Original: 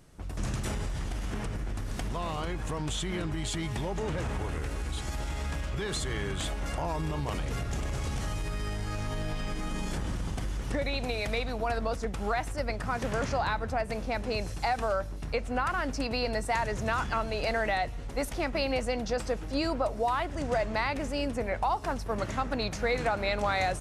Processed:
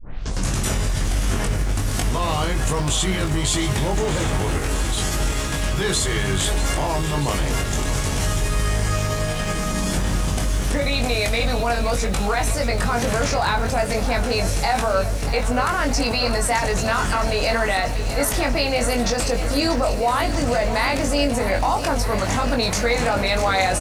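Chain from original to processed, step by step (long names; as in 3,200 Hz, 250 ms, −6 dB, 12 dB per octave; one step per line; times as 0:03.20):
turntable start at the beginning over 0.44 s
high-shelf EQ 4,600 Hz +9 dB
in parallel at 0 dB: compressor whose output falls as the input rises −34 dBFS, ratio −1
on the sum: double-tracking delay 21 ms −4 dB
feedback echo at a low word length 639 ms, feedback 80%, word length 8 bits, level −12 dB
level +3.5 dB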